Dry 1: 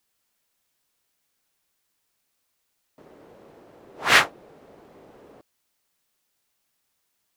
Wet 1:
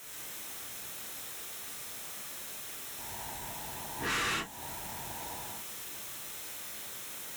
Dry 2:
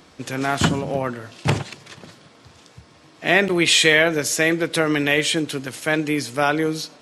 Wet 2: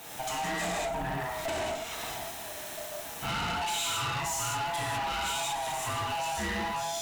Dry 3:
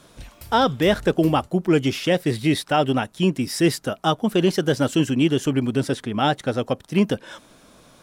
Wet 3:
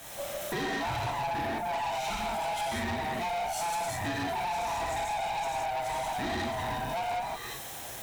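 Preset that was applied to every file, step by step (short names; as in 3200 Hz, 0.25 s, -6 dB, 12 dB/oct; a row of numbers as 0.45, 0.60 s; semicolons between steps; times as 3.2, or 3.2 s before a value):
band-swap scrambler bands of 500 Hz; requantised 8-bit, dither triangular; dynamic EQ 7300 Hz, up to +7 dB, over -50 dBFS, Q 4.6; notch 4700 Hz, Q 6.1; non-linear reverb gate 0.23 s flat, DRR -6.5 dB; compressor 3:1, threshold -27 dBFS; HPF 44 Hz; tube stage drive 29 dB, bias 0.4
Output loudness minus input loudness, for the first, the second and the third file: -18.0, -12.5, -11.0 LU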